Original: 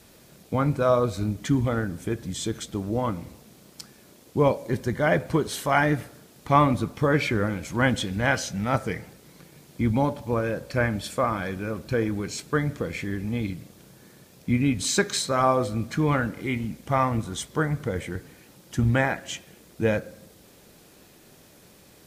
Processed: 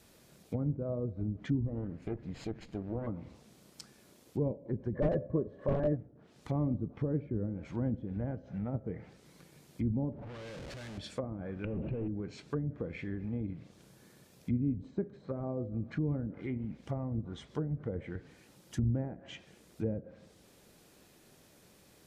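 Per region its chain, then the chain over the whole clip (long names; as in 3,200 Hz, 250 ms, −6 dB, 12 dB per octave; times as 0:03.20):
0:01.67–0:03.07: lower of the sound and its delayed copy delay 0.44 ms + high-shelf EQ 3,600 Hz −6.5 dB
0:04.94–0:05.97: hollow resonant body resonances 580/1,100/1,700 Hz, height 17 dB, ringing for 40 ms + wrap-around overflow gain 5 dB
0:10.12–0:10.98: dynamic equaliser 400 Hz, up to −3 dB, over −35 dBFS, Q 0.77 + downward compressor 4 to 1, threshold −32 dBFS + comparator with hysteresis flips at −46.5 dBFS
0:11.64–0:12.08: downward compressor 3 to 1, threshold −30 dBFS + leveller curve on the samples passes 5 + low-pass with resonance 2,700 Hz, resonance Q 8.8
whole clip: treble cut that deepens with the level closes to 390 Hz, closed at −21.5 dBFS; dynamic equaliser 1,100 Hz, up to −5 dB, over −47 dBFS, Q 1.5; level −8 dB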